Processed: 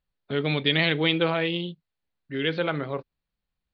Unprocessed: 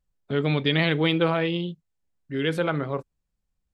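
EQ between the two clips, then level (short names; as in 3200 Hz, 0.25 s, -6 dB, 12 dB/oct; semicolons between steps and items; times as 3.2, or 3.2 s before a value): elliptic low-pass 4400 Hz, stop band 50 dB; dynamic EQ 1200 Hz, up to -4 dB, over -40 dBFS, Q 1.3; tilt +1.5 dB/oct; +1.5 dB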